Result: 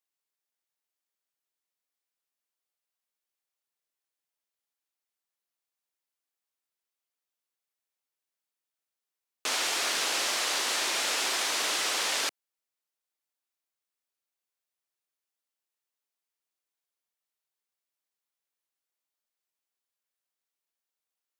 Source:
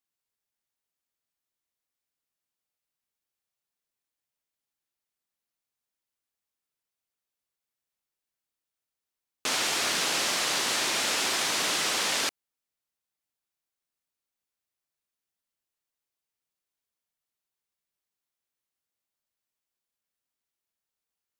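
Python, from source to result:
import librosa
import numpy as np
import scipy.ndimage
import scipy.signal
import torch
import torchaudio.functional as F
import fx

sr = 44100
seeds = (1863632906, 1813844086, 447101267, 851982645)

y = scipy.signal.sosfilt(scipy.signal.butter(2, 340.0, 'highpass', fs=sr, output='sos'), x)
y = F.gain(torch.from_numpy(y), -1.5).numpy()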